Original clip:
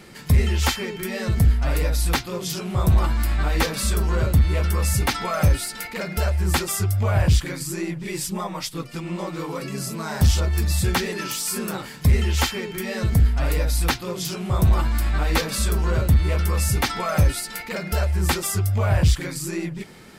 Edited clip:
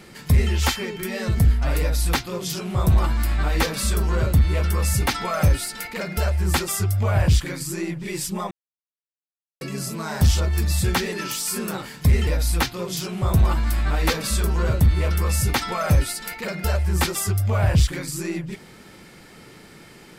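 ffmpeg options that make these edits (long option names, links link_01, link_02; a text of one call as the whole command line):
ffmpeg -i in.wav -filter_complex "[0:a]asplit=4[link_01][link_02][link_03][link_04];[link_01]atrim=end=8.51,asetpts=PTS-STARTPTS,afade=type=out:start_time=8.506:duration=0.004:curve=hsin[link_05];[link_02]atrim=start=8.51:end=9.61,asetpts=PTS-STARTPTS,volume=0[link_06];[link_03]atrim=start=9.61:end=12.272,asetpts=PTS-STARTPTS,afade=type=in:duration=0.004:curve=hsin[link_07];[link_04]atrim=start=13.548[link_08];[link_05][link_06][link_07]concat=n=3:v=0:a=1[link_09];[link_09][link_08]acrossfade=duration=0.004:curve1=hsin:curve2=hsin" out.wav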